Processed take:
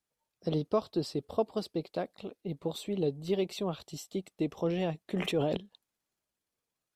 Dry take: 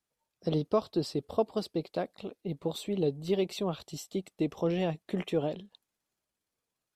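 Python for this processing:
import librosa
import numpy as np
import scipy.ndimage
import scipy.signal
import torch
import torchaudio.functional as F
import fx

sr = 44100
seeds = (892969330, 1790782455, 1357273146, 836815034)

y = fx.sustainer(x, sr, db_per_s=26.0, at=(5.09, 5.57))
y = y * librosa.db_to_amplitude(-1.5)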